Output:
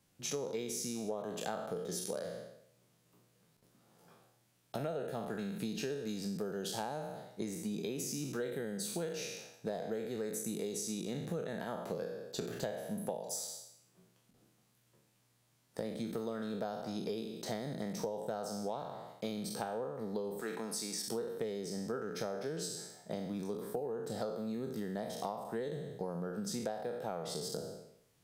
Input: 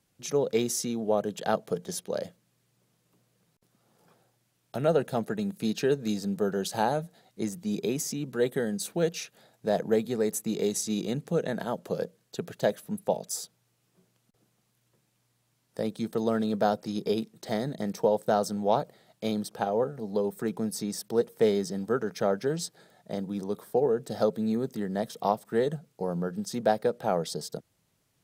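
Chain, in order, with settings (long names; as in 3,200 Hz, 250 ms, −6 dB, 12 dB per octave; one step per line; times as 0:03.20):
peak hold with a decay on every bin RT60 0.72 s
0:20.41–0:21.08: meter weighting curve A
downward compressor 10 to 1, threshold −33 dBFS, peak gain reduction 17.5 dB
level −2 dB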